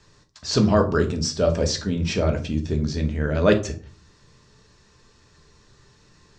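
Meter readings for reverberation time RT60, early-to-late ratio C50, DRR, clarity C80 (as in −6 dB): 0.45 s, 13.0 dB, 3.5 dB, 18.0 dB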